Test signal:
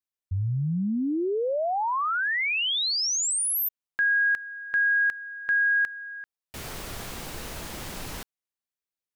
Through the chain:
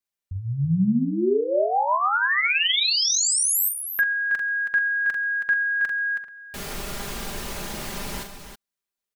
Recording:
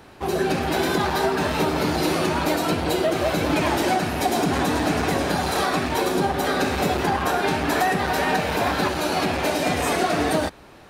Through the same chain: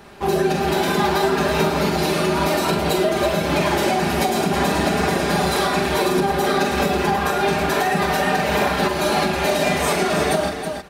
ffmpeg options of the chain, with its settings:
ffmpeg -i in.wav -filter_complex "[0:a]aecho=1:1:5:0.54,asplit=2[link_01][link_02];[link_02]aecho=0:1:43|135|322:0.501|0.1|0.376[link_03];[link_01][link_03]amix=inputs=2:normalize=0,alimiter=limit=-11dB:level=0:latency=1:release=209,volume=2dB" out.wav

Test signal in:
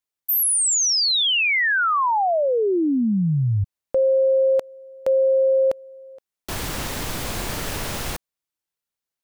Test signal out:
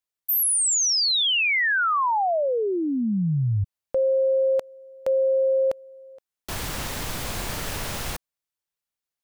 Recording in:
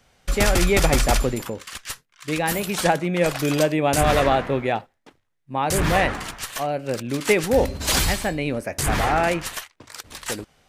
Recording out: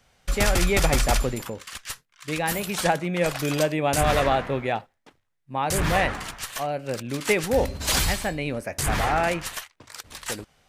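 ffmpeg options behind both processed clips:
ffmpeg -i in.wav -af "equalizer=frequency=320:width=1.1:gain=-3,volume=-2dB" out.wav

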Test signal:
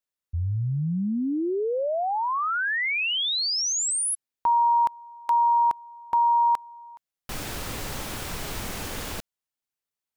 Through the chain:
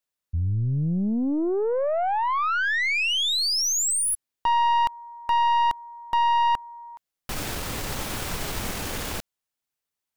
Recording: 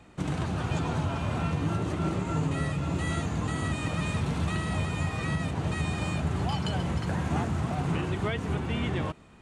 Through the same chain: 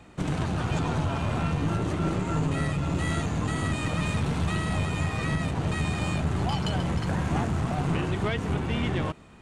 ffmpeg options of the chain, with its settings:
ffmpeg -i in.wav -af "aeval=exprs='(tanh(12.6*val(0)+0.35)-tanh(0.35))/12.6':channel_layout=same,volume=4dB" out.wav

